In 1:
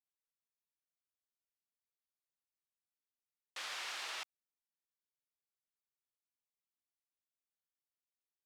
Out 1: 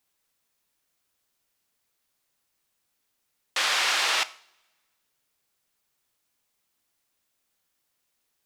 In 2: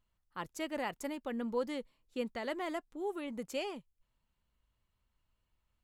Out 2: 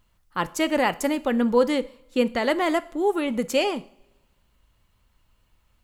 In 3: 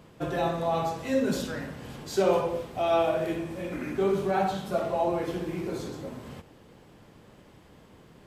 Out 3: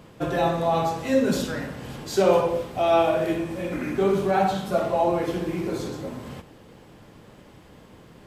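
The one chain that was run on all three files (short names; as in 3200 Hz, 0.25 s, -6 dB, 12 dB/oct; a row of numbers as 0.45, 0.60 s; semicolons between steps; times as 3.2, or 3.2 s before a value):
two-slope reverb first 0.52 s, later 1.6 s, from -21 dB, DRR 14 dB; match loudness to -24 LUFS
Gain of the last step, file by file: +19.0, +15.0, +4.5 dB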